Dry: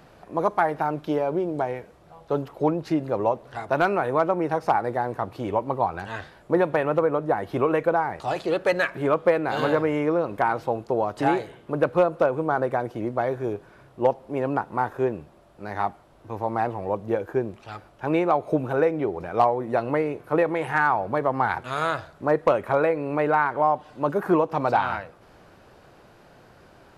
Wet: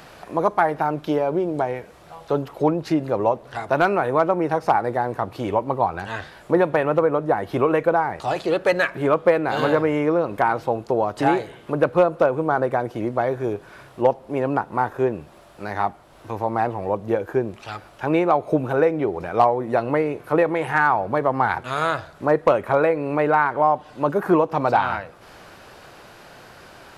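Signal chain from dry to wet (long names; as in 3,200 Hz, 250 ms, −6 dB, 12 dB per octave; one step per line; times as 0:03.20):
one half of a high-frequency compander encoder only
level +3 dB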